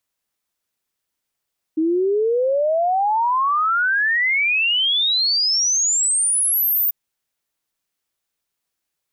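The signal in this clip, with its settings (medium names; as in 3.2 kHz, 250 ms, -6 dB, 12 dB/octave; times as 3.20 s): log sweep 310 Hz -> 15 kHz 5.14 s -15.5 dBFS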